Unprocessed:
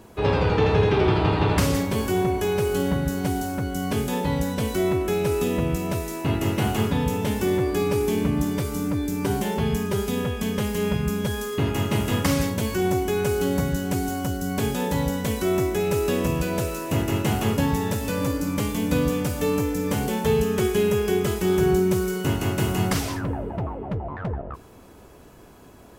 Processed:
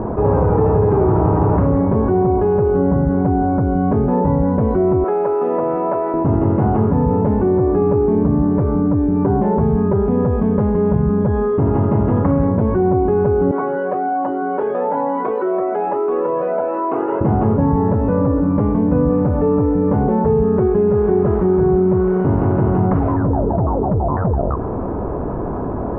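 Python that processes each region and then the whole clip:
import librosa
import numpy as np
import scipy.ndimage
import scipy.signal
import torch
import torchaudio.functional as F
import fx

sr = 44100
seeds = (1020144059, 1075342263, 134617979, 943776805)

y = fx.chain(x, sr, fx.highpass(hz=610.0, slope=12),
    fx.high_shelf(hz=6700.0, db=-10.5), at=(5.04, 6.14))
y = fx.chain(y, sr, fx.bessel_highpass(hz=490.0, order=4),
    fx.comb_cascade(direction='rising', hz=1.2), at=(13.51, 17.21))
y = fx.chain(y, sr, fx.delta_mod(bps=32000, step_db=-27.5),
    fx.running_max(window=3), at=(20.9, 22.84))
y = scipy.signal.sosfilt(scipy.signal.butter(4, 1100.0, 'lowpass', fs=sr, output='sos'), y)
y = fx.env_flatten(y, sr, amount_pct=70)
y = y * 10.0 ** (3.5 / 20.0)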